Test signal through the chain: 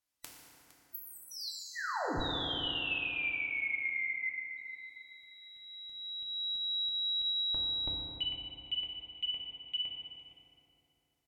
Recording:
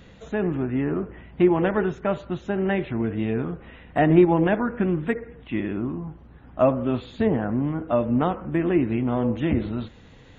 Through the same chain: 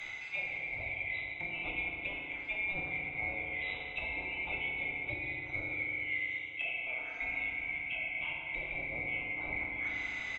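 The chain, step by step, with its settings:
neighbouring bands swapped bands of 2,000 Hz
treble cut that deepens with the level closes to 820 Hz, closed at −21.5 dBFS
notch filter 460 Hz, Q 12
dynamic equaliser 230 Hz, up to −6 dB, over −57 dBFS, Q 0.72
reversed playback
downward compressor 12 to 1, threshold −42 dBFS
reversed playback
double-tracking delay 22 ms −13.5 dB
on a send: single-tap delay 460 ms −16 dB
on the sum: feedback delay network reverb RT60 3.5 s, high-frequency decay 0.5×, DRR −3.5 dB
level +4 dB

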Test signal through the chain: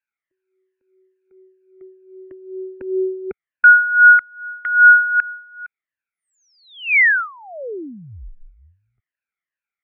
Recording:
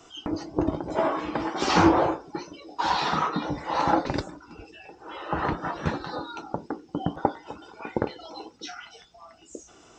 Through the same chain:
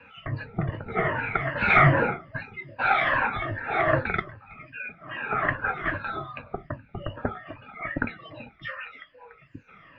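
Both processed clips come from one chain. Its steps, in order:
rippled gain that drifts along the octave scale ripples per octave 1.5, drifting −2.5 Hz, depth 16 dB
single-sideband voice off tune −190 Hz 210–3,600 Hz
flat-topped bell 1,800 Hz +15 dB 1.1 octaves
level −5 dB

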